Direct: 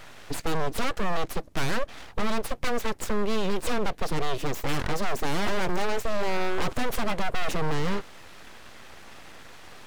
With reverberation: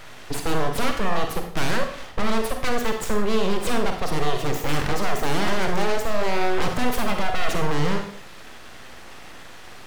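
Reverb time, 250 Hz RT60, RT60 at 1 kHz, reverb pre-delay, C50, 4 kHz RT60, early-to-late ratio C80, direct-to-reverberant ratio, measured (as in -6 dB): 0.55 s, 0.55 s, 0.55 s, 37 ms, 6.0 dB, 0.50 s, 10.0 dB, 4.0 dB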